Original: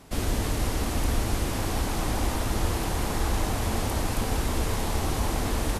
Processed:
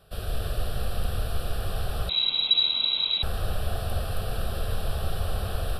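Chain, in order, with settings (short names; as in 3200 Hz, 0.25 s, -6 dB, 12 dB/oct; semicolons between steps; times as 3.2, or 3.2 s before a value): fixed phaser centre 1400 Hz, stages 8; reverb RT60 0.95 s, pre-delay 0.144 s, DRR 3 dB; 2.09–3.23 inverted band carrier 3900 Hz; gain -3.5 dB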